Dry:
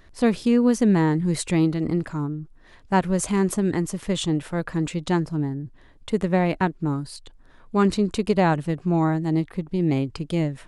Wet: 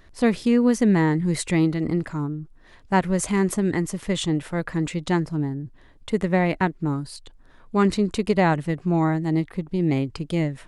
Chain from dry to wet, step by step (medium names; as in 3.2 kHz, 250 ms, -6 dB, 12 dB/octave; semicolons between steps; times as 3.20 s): dynamic bell 2 kHz, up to +6 dB, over -50 dBFS, Q 5.2